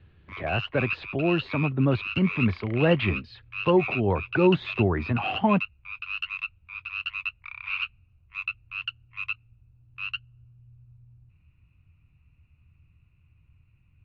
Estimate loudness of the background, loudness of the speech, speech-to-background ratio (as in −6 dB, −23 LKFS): −33.0 LKFS, −25.5 LKFS, 7.5 dB